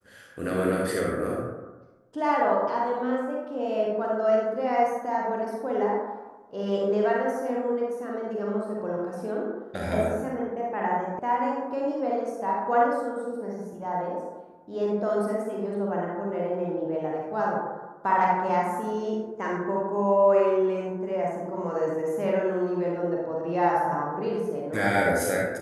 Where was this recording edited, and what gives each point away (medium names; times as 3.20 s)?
11.19 s: sound stops dead